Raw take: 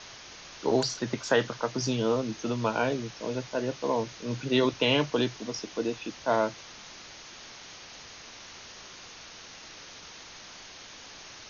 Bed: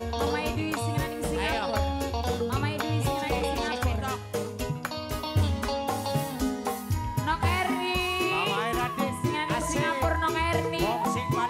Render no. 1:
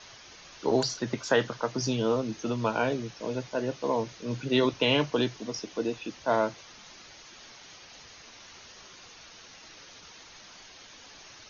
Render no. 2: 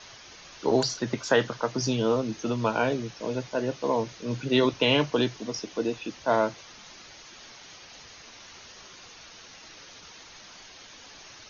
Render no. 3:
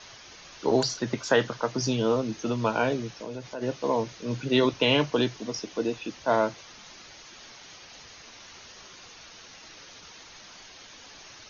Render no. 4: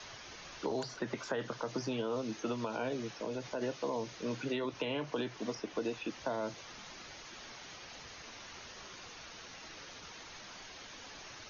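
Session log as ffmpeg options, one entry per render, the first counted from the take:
-af "afftdn=nr=6:nf=-47"
-af "volume=2dB"
-filter_complex "[0:a]asplit=3[a][b][c];[a]afade=t=out:st=3.14:d=0.02[d];[b]acompressor=threshold=-34dB:ratio=3:attack=3.2:release=140:knee=1:detection=peak,afade=t=in:st=3.14:d=0.02,afade=t=out:st=3.61:d=0.02[e];[c]afade=t=in:st=3.61:d=0.02[f];[d][e][f]amix=inputs=3:normalize=0"
-filter_complex "[0:a]alimiter=limit=-18.5dB:level=0:latency=1:release=78,acrossover=split=200|620|2600[a][b][c][d];[a]acompressor=threshold=-51dB:ratio=4[e];[b]acompressor=threshold=-37dB:ratio=4[f];[c]acompressor=threshold=-41dB:ratio=4[g];[d]acompressor=threshold=-52dB:ratio=4[h];[e][f][g][h]amix=inputs=4:normalize=0"

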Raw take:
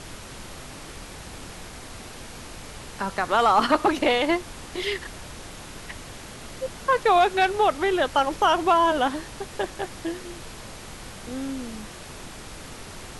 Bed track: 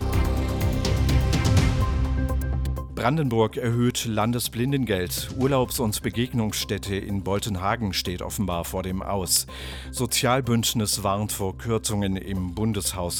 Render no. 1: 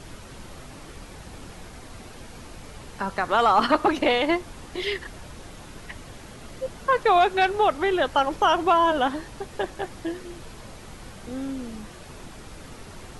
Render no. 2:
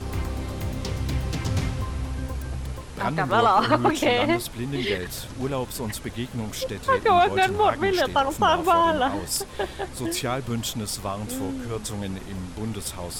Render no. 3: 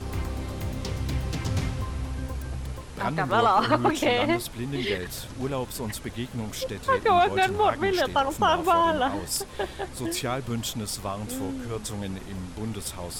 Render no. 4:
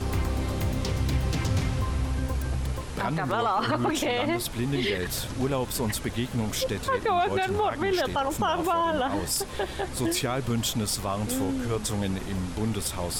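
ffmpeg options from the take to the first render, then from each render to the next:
-af "afftdn=nr=6:nf=-41"
-filter_complex "[1:a]volume=-6dB[a];[0:a][a]amix=inputs=2:normalize=0"
-af "volume=-2dB"
-filter_complex "[0:a]asplit=2[a][b];[b]acompressor=threshold=-30dB:ratio=6,volume=-1.5dB[c];[a][c]amix=inputs=2:normalize=0,alimiter=limit=-17dB:level=0:latency=1:release=55"

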